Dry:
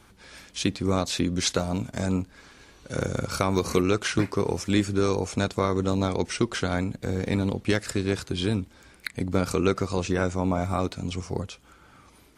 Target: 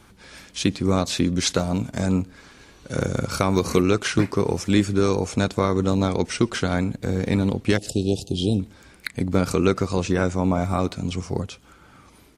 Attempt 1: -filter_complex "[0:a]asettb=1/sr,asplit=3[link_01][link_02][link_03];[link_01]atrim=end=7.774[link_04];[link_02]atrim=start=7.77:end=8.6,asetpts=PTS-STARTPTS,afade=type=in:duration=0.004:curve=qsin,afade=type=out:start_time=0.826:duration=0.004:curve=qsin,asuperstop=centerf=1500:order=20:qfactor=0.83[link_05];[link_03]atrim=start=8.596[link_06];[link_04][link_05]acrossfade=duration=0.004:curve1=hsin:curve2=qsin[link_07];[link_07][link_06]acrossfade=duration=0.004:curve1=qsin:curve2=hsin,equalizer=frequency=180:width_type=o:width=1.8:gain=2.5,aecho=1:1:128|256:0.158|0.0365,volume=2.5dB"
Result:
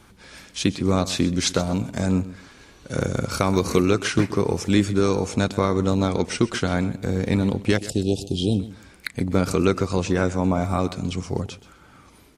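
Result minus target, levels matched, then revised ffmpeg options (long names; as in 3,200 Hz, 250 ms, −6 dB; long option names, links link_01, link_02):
echo-to-direct +12 dB
-filter_complex "[0:a]asettb=1/sr,asplit=3[link_01][link_02][link_03];[link_01]atrim=end=7.774[link_04];[link_02]atrim=start=7.77:end=8.6,asetpts=PTS-STARTPTS,afade=type=in:duration=0.004:curve=qsin,afade=type=out:start_time=0.826:duration=0.004:curve=qsin,asuperstop=centerf=1500:order=20:qfactor=0.83[link_05];[link_03]atrim=start=8.596[link_06];[link_04][link_05]acrossfade=duration=0.004:curve1=hsin:curve2=qsin[link_07];[link_07][link_06]acrossfade=duration=0.004:curve1=qsin:curve2=hsin,equalizer=frequency=180:width_type=o:width=1.8:gain=2.5,aecho=1:1:128:0.0398,volume=2.5dB"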